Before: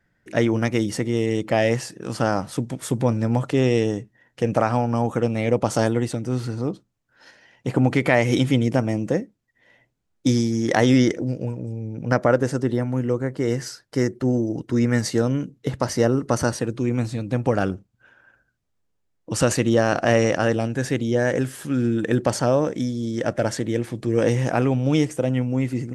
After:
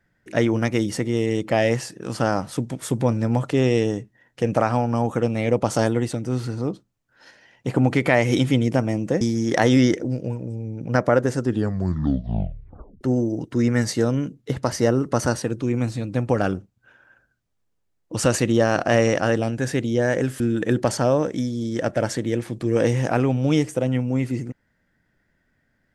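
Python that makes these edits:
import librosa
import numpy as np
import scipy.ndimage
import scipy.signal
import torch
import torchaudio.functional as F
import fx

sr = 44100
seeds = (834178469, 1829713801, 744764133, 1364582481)

y = fx.edit(x, sr, fx.cut(start_s=9.21, length_s=1.17),
    fx.tape_stop(start_s=12.58, length_s=1.6),
    fx.cut(start_s=21.57, length_s=0.25), tone=tone)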